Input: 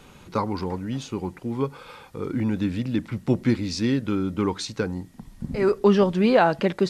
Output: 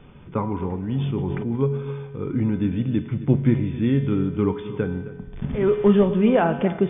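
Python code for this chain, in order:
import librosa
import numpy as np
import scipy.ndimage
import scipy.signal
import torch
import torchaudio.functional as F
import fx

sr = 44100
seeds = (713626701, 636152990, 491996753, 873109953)

y = fx.delta_mod(x, sr, bps=32000, step_db=-31.0, at=(5.33, 6.08))
y = fx.brickwall_lowpass(y, sr, high_hz=3600.0)
y = fx.low_shelf(y, sr, hz=420.0, db=9.5)
y = fx.comb_fb(y, sr, f0_hz=140.0, decay_s=1.2, harmonics='odd', damping=0.0, mix_pct=80)
y = y + 10.0 ** (-16.0 / 20.0) * np.pad(y, (int(265 * sr / 1000.0), 0))[:len(y)]
y = fx.rev_schroeder(y, sr, rt60_s=1.3, comb_ms=27, drr_db=14.0)
y = fx.sustainer(y, sr, db_per_s=20.0, at=(0.91, 1.56))
y = y * 10.0 ** (8.5 / 20.0)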